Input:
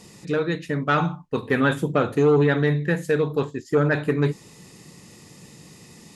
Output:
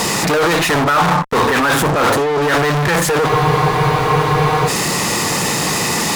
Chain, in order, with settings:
low-shelf EQ 320 Hz −8.5 dB
compressor whose output falls as the input rises −29 dBFS, ratio −0.5
fuzz pedal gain 48 dB, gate −55 dBFS
parametric band 1,000 Hz +8 dB 1.7 octaves
frozen spectrum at 0:03.30, 1.37 s
level −3 dB

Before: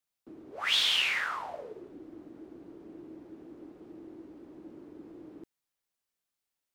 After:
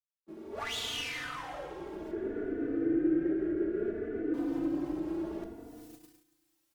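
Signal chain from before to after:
camcorder AGC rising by 20 dB per second
high-pass filter 120 Hz 12 dB per octave
high-shelf EQ 4,700 Hz +3.5 dB
mains-hum notches 50/100/150/200/250/300 Hz
downward compressor 1.5 to 1, threshold −52 dBFS, peak gain reduction 11 dB
asymmetric clip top −42.5 dBFS
0:02.11–0:04.34: drawn EQ curve 270 Hz 0 dB, 390 Hz +12 dB, 1,000 Hz −19 dB, 1,500 Hz +10 dB, 4,200 Hz −17 dB
echo machine with several playback heads 180 ms, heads first and second, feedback 49%, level −22.5 dB
feedback delay network reverb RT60 2.3 s, low-frequency decay 1.4×, high-frequency decay 0.5×, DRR 4.5 dB
noise gate −48 dBFS, range −23 dB
barber-pole flanger 3.3 ms +0.61 Hz
level +4 dB

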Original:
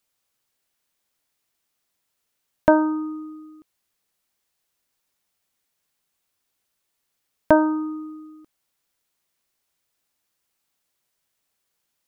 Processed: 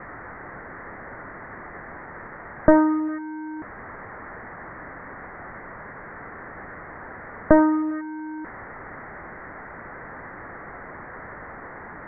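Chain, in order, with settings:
linear delta modulator 32 kbit/s, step −29.5 dBFS
Butterworth low-pass 2,000 Hz 96 dB per octave
level +2.5 dB

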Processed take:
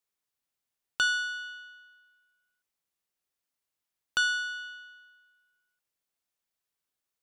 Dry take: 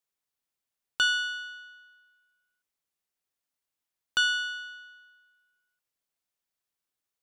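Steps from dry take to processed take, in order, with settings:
dynamic equaliser 2,800 Hz, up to −7 dB, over −42 dBFS, Q 2.4

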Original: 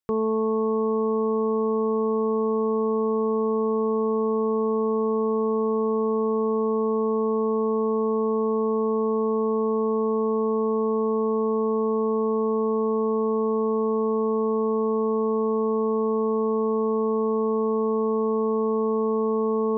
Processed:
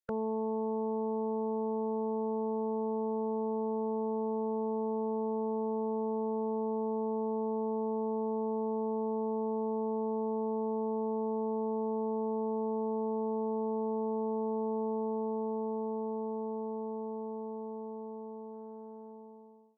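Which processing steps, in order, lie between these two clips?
fade-out on the ending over 4.96 s
dynamic equaliser 340 Hz, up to −4 dB, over −40 dBFS, Q 1.5
formants moved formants +4 semitones
level −7.5 dB

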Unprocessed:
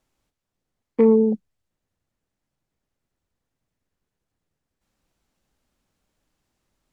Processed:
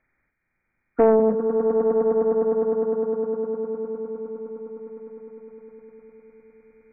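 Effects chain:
hearing-aid frequency compression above 1,200 Hz 4 to 1
echo that builds up and dies away 102 ms, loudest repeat 8, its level −9 dB
highs frequency-modulated by the lows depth 0.47 ms

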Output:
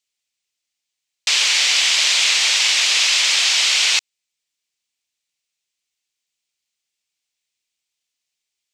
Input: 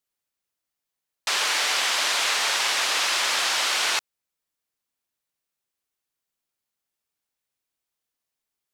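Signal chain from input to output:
flat-topped bell 4,100 Hz +13.5 dB 2.3 octaves
level −4.5 dB

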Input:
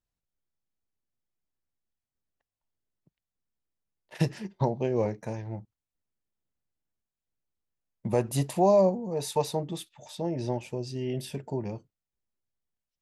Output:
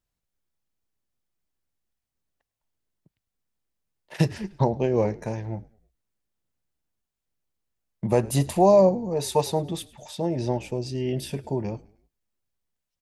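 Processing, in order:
tempo change 1×
echo with shifted repeats 104 ms, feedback 46%, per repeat −56 Hz, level −22.5 dB
level +4.5 dB

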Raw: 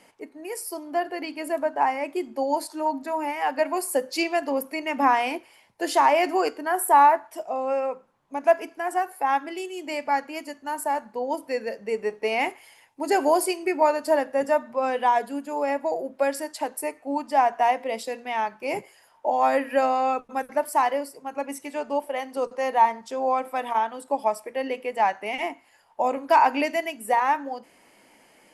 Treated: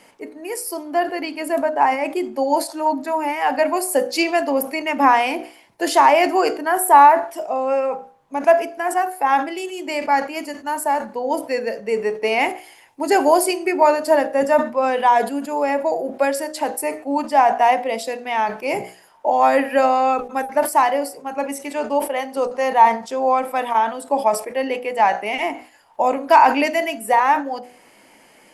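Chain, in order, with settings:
hum removal 61.54 Hz, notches 13
level that may fall only so fast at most 140 dB per second
level +6 dB

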